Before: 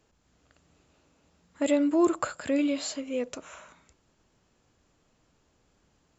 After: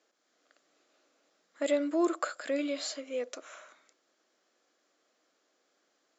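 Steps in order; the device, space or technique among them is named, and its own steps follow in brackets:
phone speaker on a table (loudspeaker in its box 350–6,800 Hz, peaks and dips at 420 Hz −6 dB, 920 Hz −10 dB, 2,700 Hz −6 dB)

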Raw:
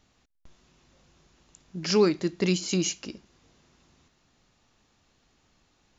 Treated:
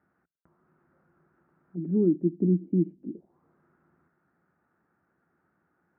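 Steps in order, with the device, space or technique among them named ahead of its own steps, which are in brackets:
envelope filter bass rig (envelope-controlled low-pass 270–1,500 Hz down, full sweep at −31.5 dBFS; loudspeaker in its box 82–2,000 Hz, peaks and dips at 110 Hz −7 dB, 170 Hz +8 dB, 350 Hz +7 dB, 1,100 Hz −6 dB)
level −7.5 dB

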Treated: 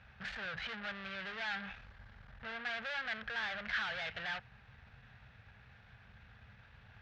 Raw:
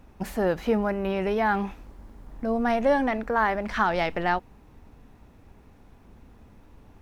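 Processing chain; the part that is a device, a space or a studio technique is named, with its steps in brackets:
scooped metal amplifier (tube saturation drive 38 dB, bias 0.35; loudspeaker in its box 89–3,900 Hz, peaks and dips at 120 Hz +9 dB, 210 Hz +4 dB, 350 Hz −3 dB, 1,000 Hz −7 dB, 1,600 Hz +9 dB; guitar amp tone stack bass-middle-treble 10-0-10)
level +8 dB

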